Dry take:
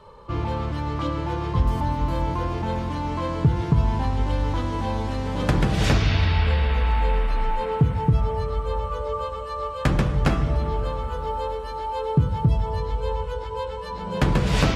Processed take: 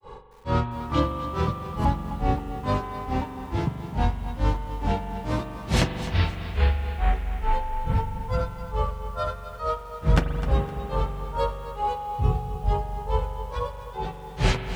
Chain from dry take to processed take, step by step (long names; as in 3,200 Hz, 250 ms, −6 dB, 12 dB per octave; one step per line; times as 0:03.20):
speech leveller within 4 dB 2 s
granular cloud 245 ms, grains 2.3 per second, pitch spread up and down by 3 semitones
spring reverb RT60 3.8 s, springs 42 ms, chirp 70 ms, DRR 7 dB
feedback echo at a low word length 257 ms, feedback 35%, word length 8 bits, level −12.5 dB
level +3 dB